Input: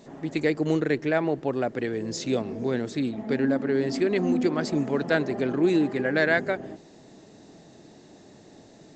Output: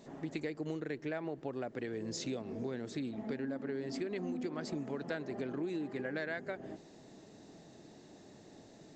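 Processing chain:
downward compressor, threshold −30 dBFS, peak gain reduction 12.5 dB
level −5.5 dB

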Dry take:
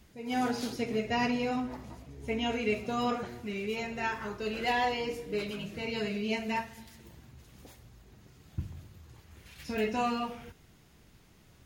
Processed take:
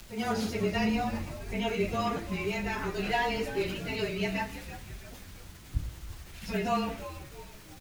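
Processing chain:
low-shelf EQ 78 Hz +11 dB
mains-hum notches 50/100/150/200/250/300/350/400/450/500 Hz
in parallel at +1.5 dB: brickwall limiter −28 dBFS, peak gain reduction 10.5 dB
on the sum: surface crackle 600 per second −36 dBFS
time stretch by phase vocoder 0.67×
frequency shifter −25 Hz
echo with shifted repeats 331 ms, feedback 48%, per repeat −130 Hz, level −13 dB

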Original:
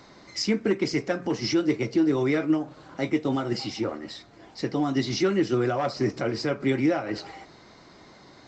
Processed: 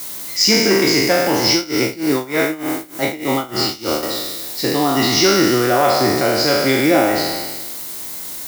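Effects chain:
peak hold with a decay on every bin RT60 1.54 s
background noise blue −42 dBFS
high-shelf EQ 2,100 Hz +9.5 dB
0:01.51–0:04.03: amplitude tremolo 3.3 Hz, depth 89%
dynamic equaliser 780 Hz, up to +6 dB, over −38 dBFS, Q 1.2
level that may rise only so fast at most 240 dB per second
level +3.5 dB

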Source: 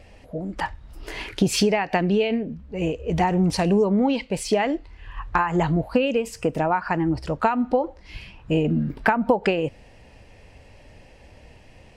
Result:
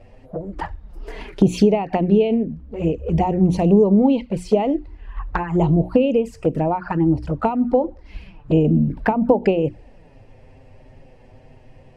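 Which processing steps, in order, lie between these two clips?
tilt shelving filter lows +7 dB, about 1,400 Hz
mains-hum notches 60/120/180/240/300/360 Hz
flanger swept by the level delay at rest 9.5 ms, full sweep at −13.5 dBFS

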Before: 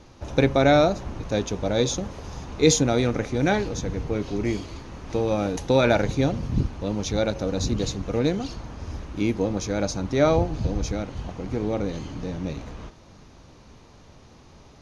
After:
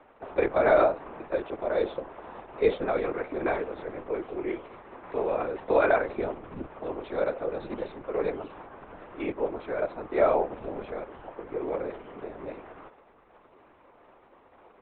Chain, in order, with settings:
linear-prediction vocoder at 8 kHz whisper
three-way crossover with the lows and the highs turned down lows −22 dB, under 340 Hz, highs −24 dB, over 2,200 Hz

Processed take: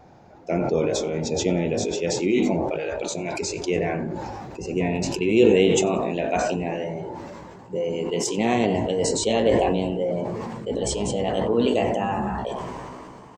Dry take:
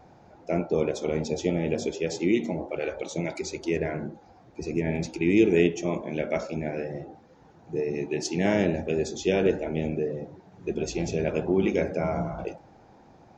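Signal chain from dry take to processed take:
pitch glide at a constant tempo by +4 semitones starting unshifted
echo with shifted repeats 92 ms, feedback 33%, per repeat −44 Hz, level −21 dB
level that may fall only so fast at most 21 dB per second
level +2.5 dB

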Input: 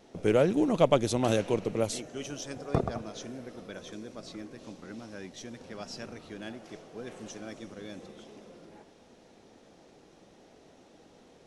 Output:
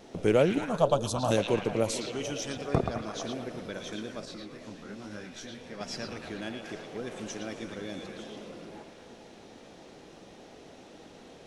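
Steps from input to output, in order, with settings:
in parallel at 0 dB: downward compressor, threshold −43 dBFS, peak gain reduction 24 dB
0:00.58–0:01.31: on the sum: phaser with its sweep stopped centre 860 Hz, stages 4
echo through a band-pass that steps 113 ms, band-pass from 3,200 Hz, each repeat −0.7 octaves, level −1 dB
0:04.25–0:05.81: micro pitch shift up and down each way 39 cents

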